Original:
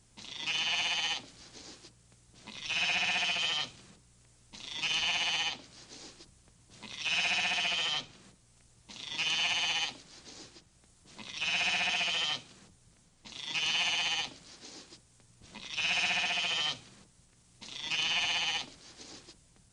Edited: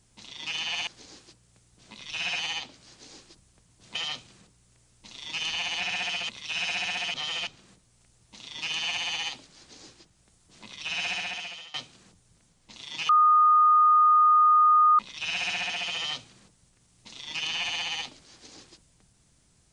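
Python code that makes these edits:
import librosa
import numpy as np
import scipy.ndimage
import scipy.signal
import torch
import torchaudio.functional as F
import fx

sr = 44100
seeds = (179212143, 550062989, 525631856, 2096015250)

y = fx.edit(x, sr, fx.cut(start_s=0.87, length_s=0.56),
    fx.swap(start_s=2.95, length_s=0.49, other_s=5.29, other_length_s=1.56),
    fx.reverse_span(start_s=7.7, length_s=0.33),
    fx.fade_out_to(start_s=11.62, length_s=0.68, floor_db=-22.0),
    fx.bleep(start_s=13.65, length_s=1.9, hz=1230.0, db=-15.5), tone=tone)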